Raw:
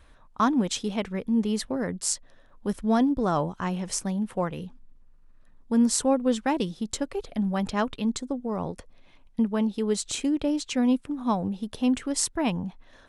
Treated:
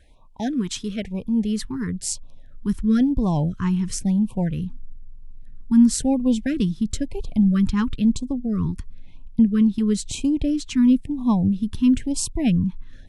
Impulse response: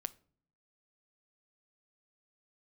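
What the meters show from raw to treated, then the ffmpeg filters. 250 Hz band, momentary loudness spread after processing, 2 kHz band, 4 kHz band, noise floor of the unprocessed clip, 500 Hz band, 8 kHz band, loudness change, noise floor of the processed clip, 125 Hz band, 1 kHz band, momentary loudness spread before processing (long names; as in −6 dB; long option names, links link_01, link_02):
+6.5 dB, 11 LU, −1.5 dB, 0.0 dB, −55 dBFS, −4.0 dB, 0.0 dB, +5.0 dB, −42 dBFS, +9.5 dB, −6.0 dB, 9 LU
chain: -af "asubboost=boost=7.5:cutoff=180,afftfilt=real='re*(1-between(b*sr/1024,580*pow(1700/580,0.5+0.5*sin(2*PI*1*pts/sr))/1.41,580*pow(1700/580,0.5+0.5*sin(2*PI*1*pts/sr))*1.41))':imag='im*(1-between(b*sr/1024,580*pow(1700/580,0.5+0.5*sin(2*PI*1*pts/sr))/1.41,580*pow(1700/580,0.5+0.5*sin(2*PI*1*pts/sr))*1.41))':win_size=1024:overlap=0.75"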